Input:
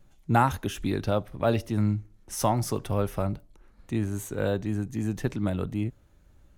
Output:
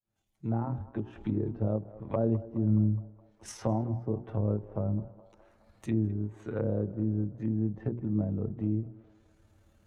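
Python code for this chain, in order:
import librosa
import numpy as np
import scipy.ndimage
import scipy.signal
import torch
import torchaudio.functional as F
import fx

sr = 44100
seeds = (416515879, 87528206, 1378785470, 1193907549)

p1 = fx.fade_in_head(x, sr, length_s=0.64)
p2 = scipy.signal.sosfilt(scipy.signal.butter(2, 58.0, 'highpass', fs=sr, output='sos'), p1)
p3 = fx.env_lowpass_down(p2, sr, base_hz=430.0, full_db=-25.0)
p4 = fx.stretch_grains(p3, sr, factor=1.5, grain_ms=54.0)
p5 = fx.hum_notches(p4, sr, base_hz=60, count=6)
p6 = p5 + fx.echo_banded(p5, sr, ms=209, feedback_pct=66, hz=890.0, wet_db=-15.0, dry=0)
y = fx.end_taper(p6, sr, db_per_s=220.0)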